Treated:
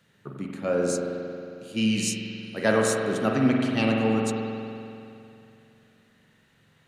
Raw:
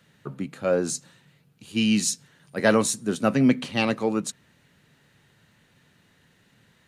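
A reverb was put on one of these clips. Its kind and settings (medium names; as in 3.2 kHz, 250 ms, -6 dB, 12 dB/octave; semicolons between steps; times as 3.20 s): spring tank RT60 2.7 s, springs 45 ms, chirp 55 ms, DRR -0.5 dB; trim -4 dB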